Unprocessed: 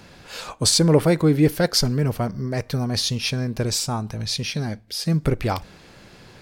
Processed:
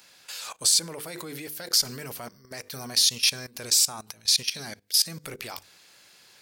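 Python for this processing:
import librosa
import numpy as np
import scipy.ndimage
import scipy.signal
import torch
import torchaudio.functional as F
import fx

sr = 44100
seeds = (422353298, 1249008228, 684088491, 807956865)

y = fx.tilt_eq(x, sr, slope=4.5)
y = fx.hum_notches(y, sr, base_hz=50, count=10)
y = fx.level_steps(y, sr, step_db=18)
y = y * 10.0 ** (-1.5 / 20.0)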